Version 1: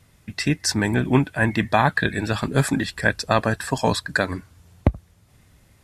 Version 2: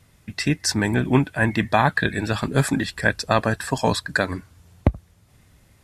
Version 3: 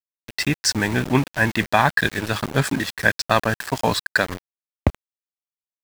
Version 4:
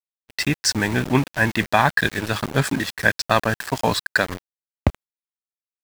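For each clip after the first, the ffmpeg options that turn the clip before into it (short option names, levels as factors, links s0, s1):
-af anull
-af "tiltshelf=f=970:g=-3,adynamicsmooth=sensitivity=2.5:basefreq=4900,aeval=exprs='val(0)*gte(abs(val(0)),0.0376)':c=same,volume=1.19"
-af "agate=range=0.0112:threshold=0.0158:ratio=16:detection=peak"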